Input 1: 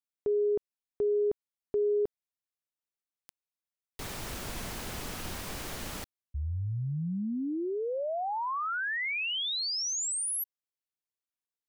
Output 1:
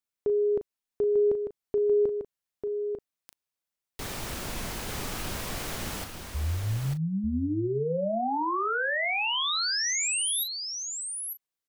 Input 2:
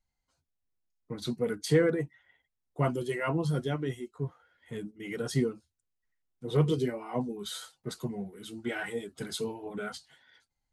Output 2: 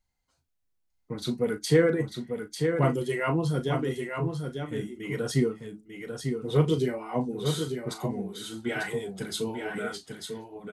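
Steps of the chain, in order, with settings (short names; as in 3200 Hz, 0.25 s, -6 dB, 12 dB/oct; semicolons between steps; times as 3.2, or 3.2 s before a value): doubler 37 ms -11 dB; echo 0.895 s -6 dB; gain +3 dB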